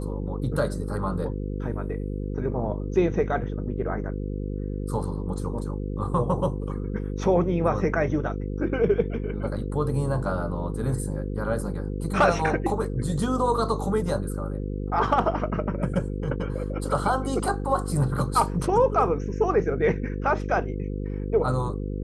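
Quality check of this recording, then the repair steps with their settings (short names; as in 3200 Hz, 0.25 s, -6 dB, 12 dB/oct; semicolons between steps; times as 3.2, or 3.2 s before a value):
buzz 50 Hz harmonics 10 -30 dBFS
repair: de-hum 50 Hz, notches 10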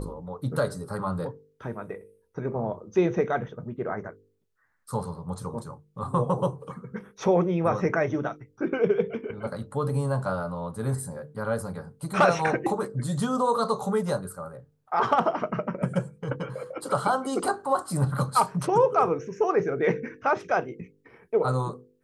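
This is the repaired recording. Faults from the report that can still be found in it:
none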